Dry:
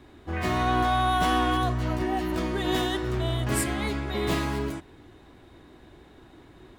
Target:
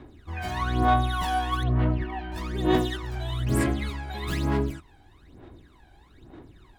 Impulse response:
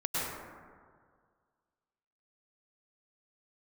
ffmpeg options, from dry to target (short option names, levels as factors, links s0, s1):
-filter_complex "[0:a]asettb=1/sr,asplit=3[s0][s1][s2];[s0]atrim=end=1.634[s3];[s1]atrim=start=1.63:end=2.32,asetpts=PTS-STARTPTS,afade=t=in:d=0.004:c=qsin,afade=t=out:st=0.686:d=0.004:c=qsin,lowpass=f=3400:w=0.5412,lowpass=f=3400:w=1.3066[s4];[s2]atrim=start=2.316[s5];[s3][s4]acrossfade=d=0.004:c1=hsin:c2=qsin[s6];[s6][s5]acrossfade=d=0.004:c1=qsin:c2=hsin,aphaser=in_gain=1:out_gain=1:delay=1.3:decay=0.77:speed=1.1:type=sinusoidal,volume=0.447"